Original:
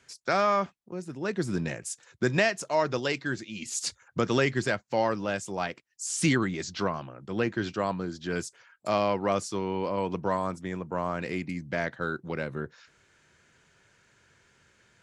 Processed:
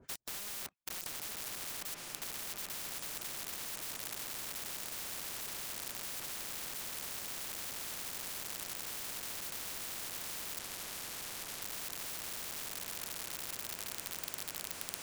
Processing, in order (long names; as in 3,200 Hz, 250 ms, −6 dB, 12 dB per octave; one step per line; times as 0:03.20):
loose part that buzzes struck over −36 dBFS, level −29 dBFS
tilt shelving filter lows +7 dB, about 1,200 Hz
leveller curve on the samples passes 1
downward compressor 10 to 1, threshold −27 dBFS, peak gain reduction 14.5 dB
two-band tremolo in antiphase 4.5 Hz, depth 100%, crossover 980 Hz
leveller curve on the samples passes 5
feedback delay with all-pass diffusion 1,150 ms, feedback 76%, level −12 dB
wrap-around overflow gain 26.5 dB
0:10.59–0:11.62: high-frequency loss of the air 54 metres
every bin compressed towards the loudest bin 10 to 1
level +13 dB